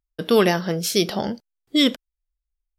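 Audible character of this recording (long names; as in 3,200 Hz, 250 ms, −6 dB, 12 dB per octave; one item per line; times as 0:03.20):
background noise floor −85 dBFS
spectral slope −4.0 dB per octave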